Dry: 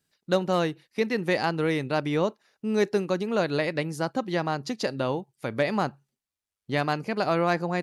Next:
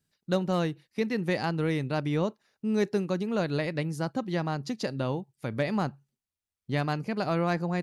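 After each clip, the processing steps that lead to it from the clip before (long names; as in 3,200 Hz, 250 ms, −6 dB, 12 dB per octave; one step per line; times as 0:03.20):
bass and treble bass +8 dB, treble +1 dB
level −5 dB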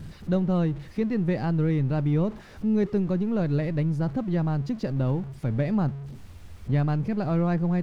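converter with a step at zero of −37 dBFS
RIAA equalisation playback
level −4 dB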